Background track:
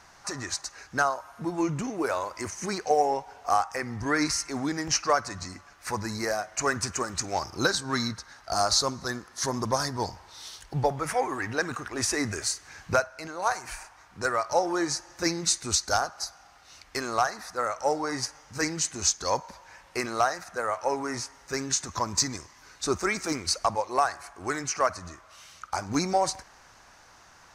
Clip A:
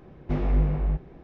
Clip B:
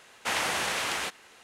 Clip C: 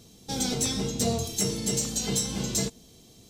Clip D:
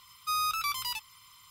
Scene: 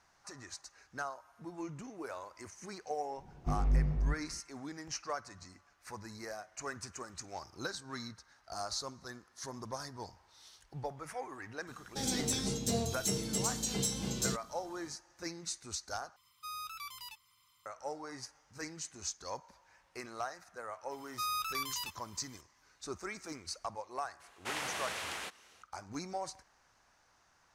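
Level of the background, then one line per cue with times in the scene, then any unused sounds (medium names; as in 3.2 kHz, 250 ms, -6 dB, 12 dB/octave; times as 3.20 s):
background track -15 dB
3.17 s: add A -14 dB + tone controls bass +8 dB, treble +11 dB
11.67 s: add C -6.5 dB
16.16 s: replace with D -13.5 dB
20.91 s: add D -6 dB
24.20 s: add B -10 dB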